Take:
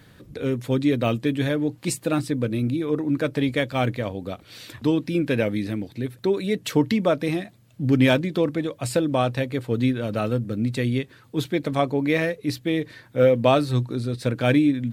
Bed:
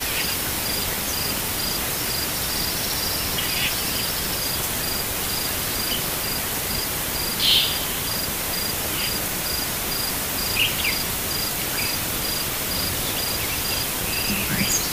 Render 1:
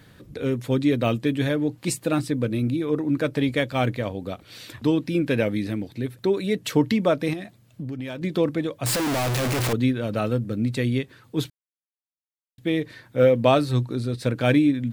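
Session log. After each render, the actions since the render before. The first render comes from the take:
0:07.33–0:08.22: downward compressor 12 to 1, threshold −28 dBFS
0:08.86–0:09.73: sign of each sample alone
0:11.50–0:12.58: silence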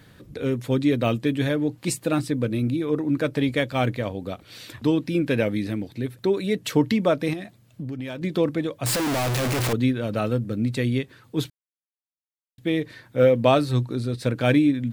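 no processing that can be heard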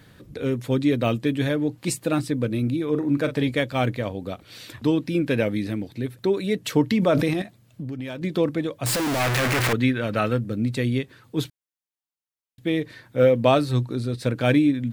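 0:02.91–0:03.48: double-tracking delay 42 ms −10 dB
0:06.94–0:07.42: level that may fall only so fast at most 26 dB per second
0:09.20–0:10.41: parametric band 1,800 Hz +8.5 dB 1.5 octaves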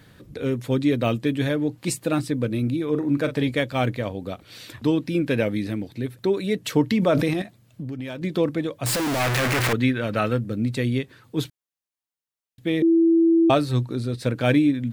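0:12.82–0:13.50: beep over 331 Hz −13.5 dBFS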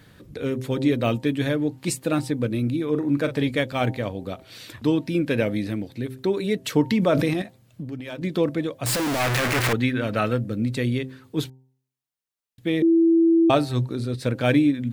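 hum removal 130.5 Hz, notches 7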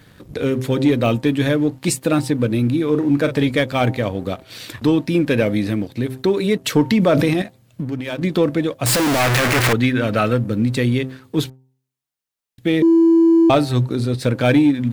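leveller curve on the samples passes 1
in parallel at −2.5 dB: downward compressor, threshold −24 dBFS, peak gain reduction 11.5 dB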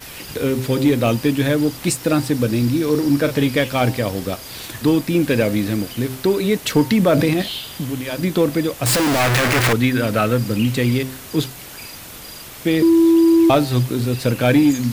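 mix in bed −11 dB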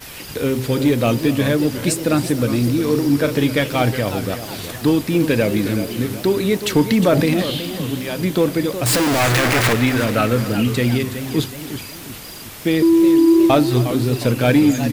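single-tap delay 265 ms −18 dB
feedback echo with a swinging delay time 365 ms, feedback 46%, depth 196 cents, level −11 dB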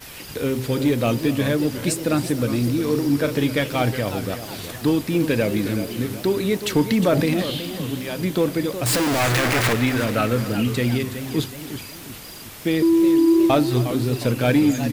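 level −3.5 dB

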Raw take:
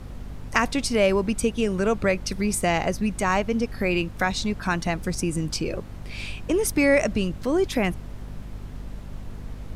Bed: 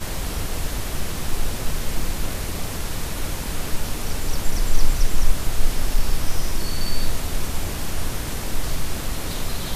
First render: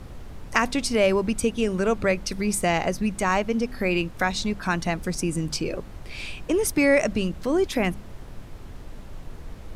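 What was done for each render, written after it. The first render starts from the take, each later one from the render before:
hum removal 50 Hz, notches 5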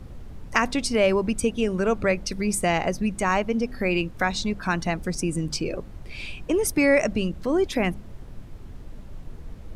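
broadband denoise 6 dB, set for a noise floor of −41 dBFS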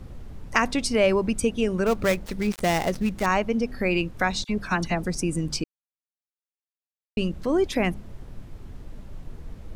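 0:01.86–0:03.26: gap after every zero crossing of 0.12 ms
0:04.44–0:05.06: all-pass dispersion lows, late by 48 ms, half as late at 1,900 Hz
0:05.64–0:07.17: silence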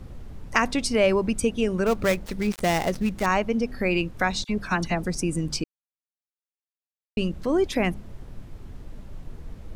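no processing that can be heard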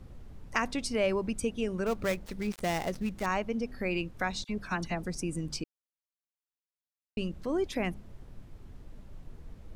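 level −8 dB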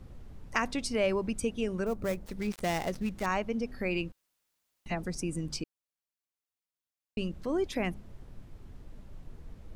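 0:01.84–0:02.36: parametric band 3,000 Hz −13 dB → −3 dB 2.7 octaves
0:04.12–0:04.86: fill with room tone

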